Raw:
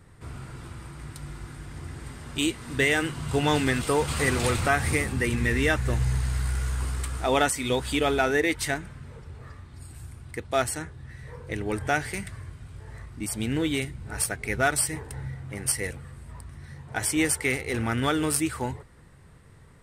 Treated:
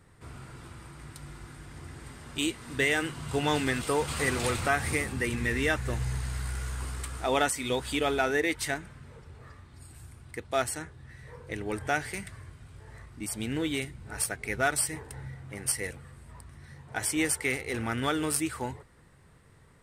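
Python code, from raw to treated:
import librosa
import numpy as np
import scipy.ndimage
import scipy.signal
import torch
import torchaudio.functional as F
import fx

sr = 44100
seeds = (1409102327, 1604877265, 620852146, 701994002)

y = fx.low_shelf(x, sr, hz=190.0, db=-4.5)
y = y * librosa.db_to_amplitude(-3.0)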